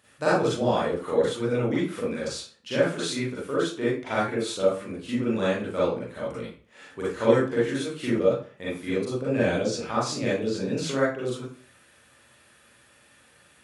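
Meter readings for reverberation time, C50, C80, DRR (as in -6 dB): 0.45 s, -0.5 dB, 7.0 dB, -9.0 dB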